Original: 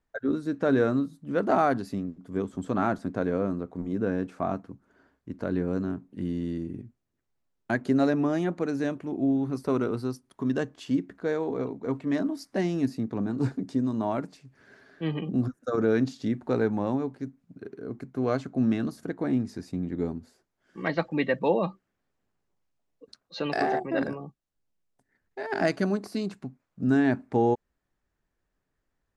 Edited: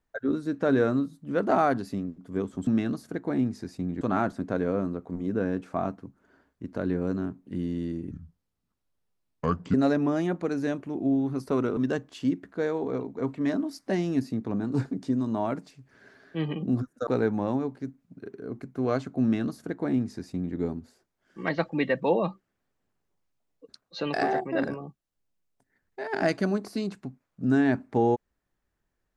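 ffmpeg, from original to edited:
-filter_complex "[0:a]asplit=7[a][b][c][d][e][f][g];[a]atrim=end=2.672[h];[b]atrim=start=18.608:end=19.952[i];[c]atrim=start=2.668:end=6.774[j];[d]atrim=start=6.77:end=7.91,asetpts=PTS-STARTPTS,asetrate=30870,aresample=44100[k];[e]atrim=start=7.906:end=9.942[l];[f]atrim=start=10.428:end=15.732[m];[g]atrim=start=16.458[n];[h][i]acrossfade=d=0.004:c1=hsin:c2=hsin[o];[o][j]acrossfade=d=0.004:c1=hsin:c2=hsin[p];[p][k]acrossfade=d=0.004:c1=hsin:c2=hsin[q];[q][l]acrossfade=d=0.004:c1=hsin:c2=hsin[r];[r][m]acrossfade=d=0.004:c1=hsin:c2=hsin[s];[s][n]acrossfade=d=0.004:c1=hsin:c2=hsin"

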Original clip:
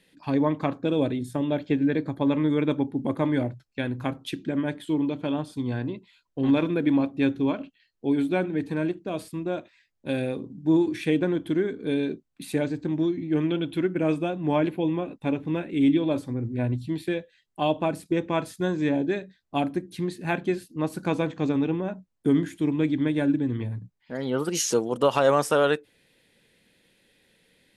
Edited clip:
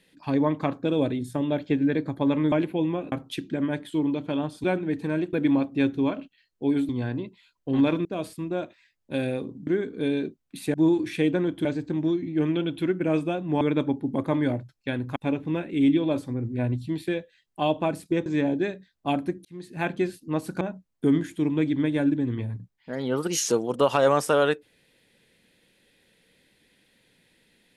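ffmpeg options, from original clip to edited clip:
-filter_complex "[0:a]asplit=15[a][b][c][d][e][f][g][h][i][j][k][l][m][n][o];[a]atrim=end=2.522[p];[b]atrim=start=14.558:end=15.162[q];[c]atrim=start=4.068:end=5.592[r];[d]atrim=start=8.308:end=9.002[s];[e]atrim=start=6.748:end=8.312[t];[f]atrim=start=5.588:end=6.752[u];[g]atrim=start=8.998:end=10.622[v];[h]atrim=start=11.528:end=12.602[w];[i]atrim=start=10.618:end=11.532[x];[j]atrim=start=12.598:end=14.562[y];[k]atrim=start=2.518:end=4.072[z];[l]atrim=start=15.158:end=18.262[aa];[m]atrim=start=18.738:end=19.93,asetpts=PTS-STARTPTS,afade=t=out:st=1.188:d=0.004:c=hsin[ab];[n]atrim=start=19.93:end=21.092,asetpts=PTS-STARTPTS,afade=t=in:d=0.44[ac];[o]atrim=start=21.828[ad];[p][q]acrossfade=d=0.004:c1=hsin:c2=hsin[ae];[ae][r]acrossfade=d=0.004:c1=hsin:c2=hsin[af];[af][s]acrossfade=d=0.004:c1=hsin:c2=hsin[ag];[ag][t]acrossfade=d=0.004:c1=hsin:c2=hsin[ah];[ah][u]acrossfade=d=0.004:c1=hsin:c2=hsin[ai];[ai][v]acrossfade=d=0.004:c1=hsin:c2=hsin[aj];[aj][w]acrossfade=d=0.004:c1=hsin:c2=hsin[ak];[ak][x]acrossfade=d=0.004:c1=hsin:c2=hsin[al];[al][y]acrossfade=d=0.004:c1=hsin:c2=hsin[am];[am][z]acrossfade=d=0.004:c1=hsin:c2=hsin[an];[an][aa]acrossfade=d=0.004:c1=hsin:c2=hsin[ao];[ab][ac]concat=n=2:v=0:a=1[ap];[ao][ap]acrossfade=d=0.004:c1=hsin:c2=hsin[aq];[aq][ad]acrossfade=d=0.004:c1=hsin:c2=hsin"

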